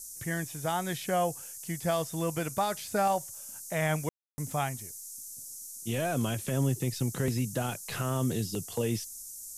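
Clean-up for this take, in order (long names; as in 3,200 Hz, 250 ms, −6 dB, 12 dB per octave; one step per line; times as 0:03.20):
ambience match 0:04.09–0:04.38
noise reduction from a noise print 30 dB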